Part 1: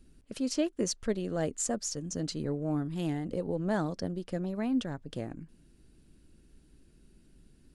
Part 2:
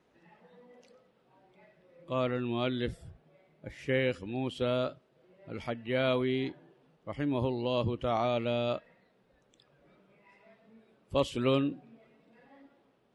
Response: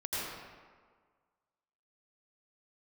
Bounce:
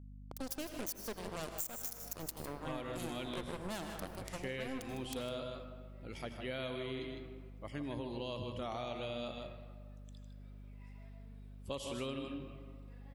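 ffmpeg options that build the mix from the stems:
-filter_complex "[0:a]aeval=exprs='if(lt(val(0),0),0.447*val(0),val(0))':c=same,acrusher=bits=4:mix=0:aa=0.5,volume=0.501,asplit=3[s0][s1][s2];[s1]volume=0.266[s3];[s2]volume=0.237[s4];[1:a]adelay=550,volume=0.335,asplit=3[s5][s6][s7];[s6]volume=0.266[s8];[s7]volume=0.473[s9];[2:a]atrim=start_sample=2205[s10];[s3][s8]amix=inputs=2:normalize=0[s11];[s11][s10]afir=irnorm=-1:irlink=0[s12];[s4][s9]amix=inputs=2:normalize=0,aecho=0:1:155:1[s13];[s0][s5][s12][s13]amix=inputs=4:normalize=0,aemphasis=mode=production:type=75kf,aeval=exprs='val(0)+0.00316*(sin(2*PI*50*n/s)+sin(2*PI*2*50*n/s)/2+sin(2*PI*3*50*n/s)/3+sin(2*PI*4*50*n/s)/4+sin(2*PI*5*50*n/s)/5)':c=same,acompressor=threshold=0.0141:ratio=6"

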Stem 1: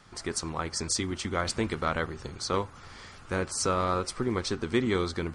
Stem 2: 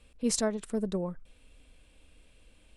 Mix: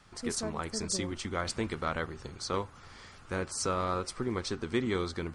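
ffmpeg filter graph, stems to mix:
-filter_complex "[0:a]volume=0.631[s0];[1:a]volume=0.376[s1];[s0][s1]amix=inputs=2:normalize=0"

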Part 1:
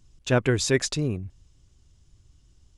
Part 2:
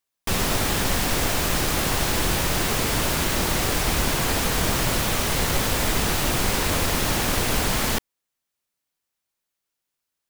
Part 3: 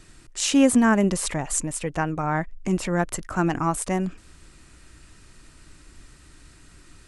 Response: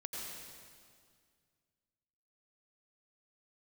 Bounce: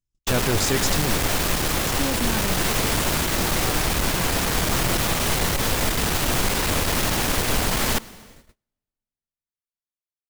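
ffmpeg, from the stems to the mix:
-filter_complex "[0:a]highshelf=f=7800:g=9.5,volume=1.33[s0];[1:a]dynaudnorm=f=150:g=3:m=6.31,volume=0.501,asplit=2[s1][s2];[s2]volume=0.119[s3];[2:a]adelay=1450,volume=0.355[s4];[3:a]atrim=start_sample=2205[s5];[s3][s5]afir=irnorm=-1:irlink=0[s6];[s0][s1][s4][s6]amix=inputs=4:normalize=0,agate=range=0.0316:threshold=0.00501:ratio=16:detection=peak,aeval=exprs='(tanh(6.31*val(0)+0.4)-tanh(0.4))/6.31':c=same"

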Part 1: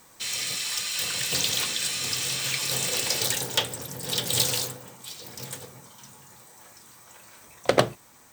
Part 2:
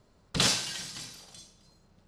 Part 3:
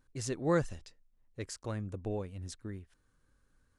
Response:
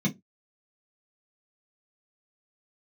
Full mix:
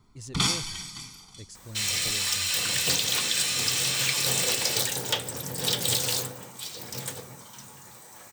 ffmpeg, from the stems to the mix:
-filter_complex "[0:a]adelay=1550,volume=1.33[s0];[1:a]aecho=1:1:0.9:0.97,volume=0.794[s1];[2:a]equalizer=f=940:t=o:w=2.5:g=-13.5,asoftclip=type=tanh:threshold=0.0299,volume=0.891[s2];[s0][s1][s2]amix=inputs=3:normalize=0,alimiter=limit=0.266:level=0:latency=1:release=298"

